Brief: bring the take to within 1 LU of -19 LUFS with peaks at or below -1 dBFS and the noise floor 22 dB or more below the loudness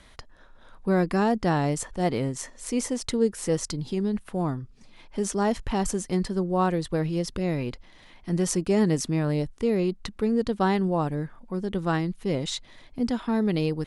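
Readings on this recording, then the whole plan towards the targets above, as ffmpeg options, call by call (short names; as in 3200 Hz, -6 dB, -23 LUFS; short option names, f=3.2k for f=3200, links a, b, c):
loudness -27.0 LUFS; peak -11.0 dBFS; loudness target -19.0 LUFS
-> -af "volume=8dB"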